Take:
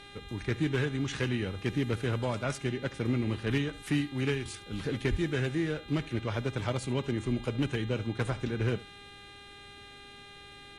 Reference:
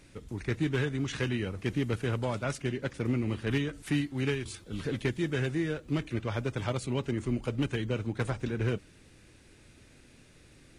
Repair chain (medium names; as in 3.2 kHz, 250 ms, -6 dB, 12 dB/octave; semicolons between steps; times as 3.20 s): de-hum 403.3 Hz, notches 10; 5.10–5.22 s: high-pass 140 Hz 24 dB/octave; inverse comb 72 ms -19.5 dB